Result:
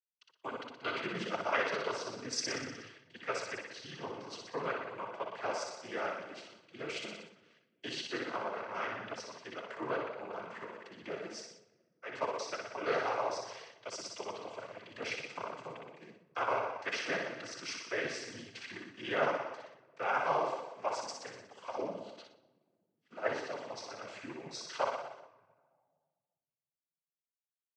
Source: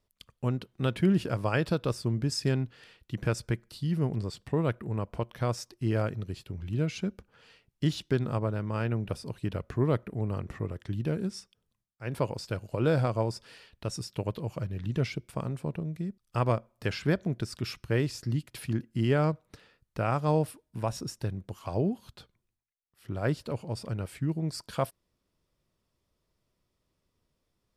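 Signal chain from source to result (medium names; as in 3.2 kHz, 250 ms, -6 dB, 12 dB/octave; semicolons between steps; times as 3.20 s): band-pass 700–5100 Hz; flutter echo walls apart 10.4 m, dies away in 0.98 s; expander -48 dBFS; simulated room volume 1900 m³, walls mixed, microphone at 0.35 m; noise-vocoded speech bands 16; band-stop 3.6 kHz, Q 13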